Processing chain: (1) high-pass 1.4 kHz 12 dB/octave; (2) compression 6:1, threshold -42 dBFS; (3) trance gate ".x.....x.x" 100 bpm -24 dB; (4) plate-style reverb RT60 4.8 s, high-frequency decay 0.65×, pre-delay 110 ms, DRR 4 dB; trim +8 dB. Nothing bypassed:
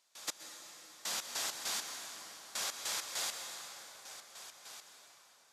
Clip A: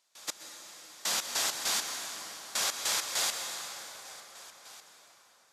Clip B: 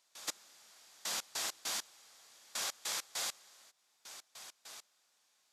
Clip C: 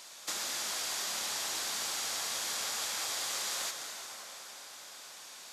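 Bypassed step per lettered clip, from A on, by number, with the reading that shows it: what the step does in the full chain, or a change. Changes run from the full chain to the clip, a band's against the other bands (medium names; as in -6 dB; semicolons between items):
2, mean gain reduction 4.5 dB; 4, momentary loudness spread change +7 LU; 3, crest factor change -5.5 dB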